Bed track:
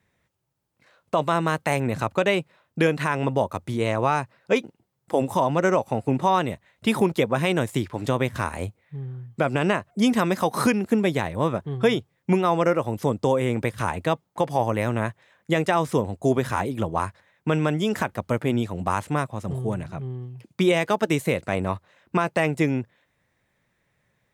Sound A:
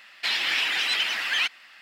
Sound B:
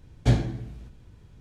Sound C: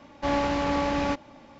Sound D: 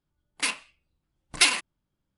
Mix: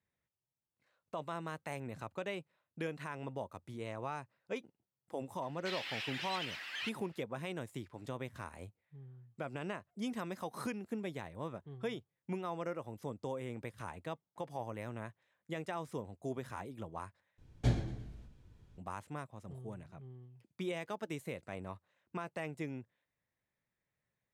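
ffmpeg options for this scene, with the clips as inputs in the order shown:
ffmpeg -i bed.wav -i cue0.wav -i cue1.wav -filter_complex "[0:a]volume=-19dB[link_01];[2:a]asplit=5[link_02][link_03][link_04][link_05][link_06];[link_03]adelay=117,afreqshift=-34,volume=-14.5dB[link_07];[link_04]adelay=234,afreqshift=-68,volume=-21.2dB[link_08];[link_05]adelay=351,afreqshift=-102,volume=-28dB[link_09];[link_06]adelay=468,afreqshift=-136,volume=-34.7dB[link_10];[link_02][link_07][link_08][link_09][link_10]amix=inputs=5:normalize=0[link_11];[link_01]asplit=2[link_12][link_13];[link_12]atrim=end=17.384[link_14];[link_11]atrim=end=1.4,asetpts=PTS-STARTPTS,volume=-10dB[link_15];[link_13]atrim=start=18.776[link_16];[1:a]atrim=end=1.81,asetpts=PTS-STARTPTS,volume=-17dB,afade=type=in:duration=0.004:curve=hsin,afade=type=out:start_time=1.806:duration=0.004:curve=hsin,adelay=5420[link_17];[link_14][link_15]acrossfade=duration=0.004:curve1=hsin:curve2=hsin[link_18];[link_18][link_16]acrossfade=duration=0.004:curve1=hsin:curve2=hsin[link_19];[link_19][link_17]amix=inputs=2:normalize=0" out.wav

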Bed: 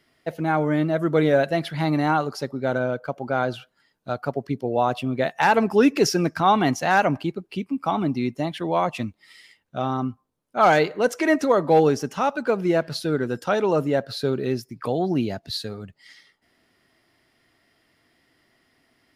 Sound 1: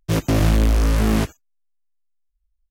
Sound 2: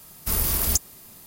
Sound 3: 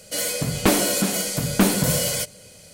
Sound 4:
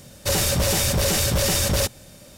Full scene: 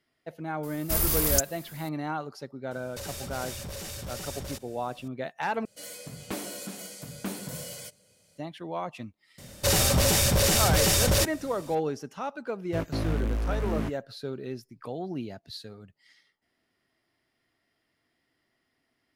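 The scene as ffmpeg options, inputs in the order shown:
ffmpeg -i bed.wav -i cue0.wav -i cue1.wav -i cue2.wav -i cue3.wav -filter_complex "[4:a]asplit=2[link_01][link_02];[0:a]volume=-11.5dB[link_03];[link_01]acompressor=threshold=-27dB:ratio=6:attack=3.2:release=140:knee=1:detection=peak[link_04];[3:a]highpass=71[link_05];[1:a]acrossover=split=2800[link_06][link_07];[link_07]acompressor=threshold=-38dB:ratio=4:attack=1:release=60[link_08];[link_06][link_08]amix=inputs=2:normalize=0[link_09];[link_03]asplit=2[link_10][link_11];[link_10]atrim=end=5.654[link_12];[link_05]atrim=end=2.73,asetpts=PTS-STARTPTS,volume=-17dB[link_13];[link_11]atrim=start=8.376[link_14];[2:a]atrim=end=1.26,asetpts=PTS-STARTPTS,volume=-2dB,afade=type=in:duration=0.004:curve=hsin,afade=type=out:start_time=1.256:duration=0.004:curve=hsin,adelay=630[link_15];[link_04]atrim=end=2.37,asetpts=PTS-STARTPTS,volume=-9dB,afade=type=in:duration=0.004:curve=hsin,afade=type=out:start_time=2.366:duration=0.004:curve=hsin,adelay=2710[link_16];[link_02]atrim=end=2.37,asetpts=PTS-STARTPTS,volume=-1.5dB,afade=type=in:duration=0.004:curve=hsin,afade=type=out:start_time=2.366:duration=0.004:curve=hsin,adelay=413658S[link_17];[link_09]atrim=end=2.7,asetpts=PTS-STARTPTS,volume=-12dB,afade=type=in:duration=0.004:curve=hsin,afade=type=out:start_time=2.696:duration=0.004:curve=hsin,adelay=12640[link_18];[link_12][link_13]acrossfade=duration=0.004:curve1=hsin:curve2=hsin[link_19];[link_19][link_14]acrossfade=duration=0.004:curve1=hsin:curve2=hsin[link_20];[link_20][link_15][link_16][link_17][link_18]amix=inputs=5:normalize=0" out.wav

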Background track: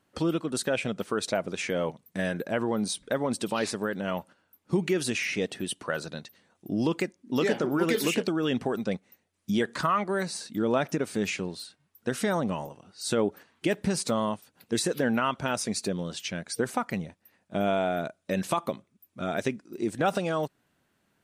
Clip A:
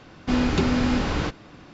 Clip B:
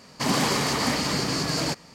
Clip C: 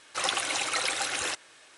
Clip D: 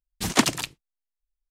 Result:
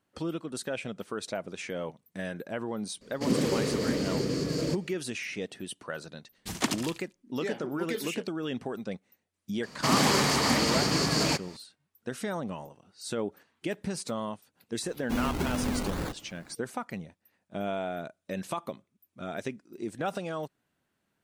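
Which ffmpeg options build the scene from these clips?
ffmpeg -i bed.wav -i cue0.wav -i cue1.wav -i cue2.wav -i cue3.wav -filter_complex "[2:a]asplit=2[link_01][link_02];[0:a]volume=-6.5dB[link_03];[link_01]lowshelf=frequency=620:width_type=q:width=3:gain=8[link_04];[4:a]aecho=1:1:74|148|222:0.251|0.0804|0.0257[link_05];[1:a]acrusher=samples=20:mix=1:aa=0.000001:lfo=1:lforange=12:lforate=2.3[link_06];[link_04]atrim=end=1.94,asetpts=PTS-STARTPTS,volume=-11dB,afade=type=in:duration=0.004:curve=hsin,afade=type=out:start_time=1.936:duration=0.004:curve=hsin,adelay=3010[link_07];[link_05]atrim=end=1.5,asetpts=PTS-STARTPTS,volume=-9dB,afade=type=in:duration=0.004:curve=hsin,afade=type=out:start_time=1.496:duration=0.004:curve=hsin,adelay=6250[link_08];[link_02]atrim=end=1.94,asetpts=PTS-STARTPTS,volume=-0.5dB,afade=type=in:duration=0.004:curve=hsin,afade=type=out:start_time=1.936:duration=0.004:curve=hsin,adelay=9630[link_09];[link_06]atrim=end=1.73,asetpts=PTS-STARTPTS,volume=-8.5dB,afade=type=in:duration=0.004:curve=hsin,afade=type=out:start_time=1.726:duration=0.004:curve=hsin,adelay=14820[link_10];[link_03][link_07][link_08][link_09][link_10]amix=inputs=5:normalize=0" out.wav

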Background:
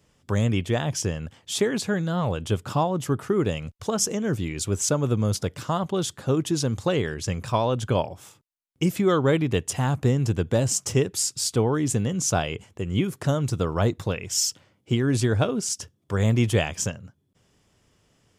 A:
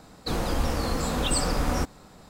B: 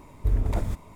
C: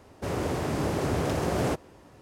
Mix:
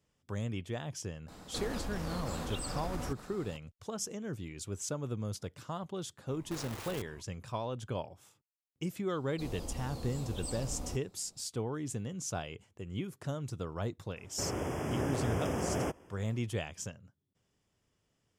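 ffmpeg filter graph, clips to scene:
ffmpeg -i bed.wav -i cue0.wav -i cue1.wav -i cue2.wav -filter_complex "[1:a]asplit=2[link_01][link_02];[0:a]volume=-14dB[link_03];[link_01]acompressor=threshold=-34dB:ratio=6:attack=3.2:release=140:knee=1:detection=peak[link_04];[2:a]aeval=exprs='(mod(35.5*val(0)+1,2)-1)/35.5':channel_layout=same[link_05];[link_02]equalizer=frequency=1600:width_type=o:width=1.2:gain=-13[link_06];[3:a]asuperstop=centerf=4100:order=12:qfactor=2.9[link_07];[link_04]atrim=end=2.29,asetpts=PTS-STARTPTS,volume=-1.5dB,afade=type=in:duration=0.004:curve=hsin,afade=type=out:start_time=2.286:duration=0.004:curve=hsin,adelay=1280[link_08];[link_05]atrim=end=0.95,asetpts=PTS-STARTPTS,volume=-9dB,afade=type=in:duration=0.004:curve=hsin,afade=type=out:start_time=0.946:duration=0.004:curve=hsin,adelay=6270[link_09];[link_06]atrim=end=2.29,asetpts=PTS-STARTPTS,volume=-14.5dB,afade=type=in:duration=0.004:curve=hsin,afade=type=out:start_time=2.286:duration=0.004:curve=hsin,adelay=9120[link_10];[link_07]atrim=end=2.21,asetpts=PTS-STARTPTS,volume=-6.5dB,afade=type=in:duration=0.004:curve=hsin,afade=type=out:start_time=2.206:duration=0.004:curve=hsin,adelay=14160[link_11];[link_03][link_08][link_09][link_10][link_11]amix=inputs=5:normalize=0" out.wav

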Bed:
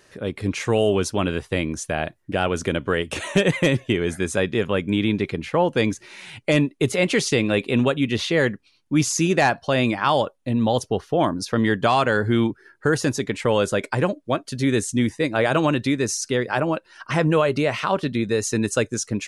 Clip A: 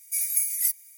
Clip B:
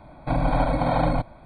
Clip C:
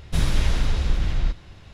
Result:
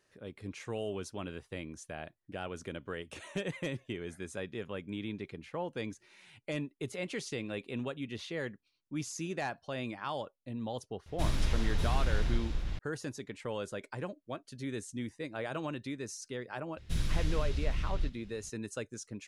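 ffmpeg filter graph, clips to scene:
ffmpeg -i bed.wav -i cue0.wav -i cue1.wav -i cue2.wav -filter_complex "[3:a]asplit=2[link_01][link_02];[0:a]volume=-18dB[link_03];[link_01]aecho=1:1:591:0.668[link_04];[link_02]equalizer=frequency=850:width=0.86:gain=-9[link_05];[link_04]atrim=end=1.73,asetpts=PTS-STARTPTS,volume=-9.5dB,afade=type=in:duration=0.004:curve=hsin,afade=type=out:start_time=1.726:duration=0.004:curve=hsin,adelay=487746S[link_06];[link_05]atrim=end=1.73,asetpts=PTS-STARTPTS,volume=-10.5dB,afade=type=in:duration=0.004:curve=hsin,afade=type=out:start_time=1.726:duration=0.004:curve=hsin,adelay=16770[link_07];[link_03][link_06][link_07]amix=inputs=3:normalize=0" out.wav

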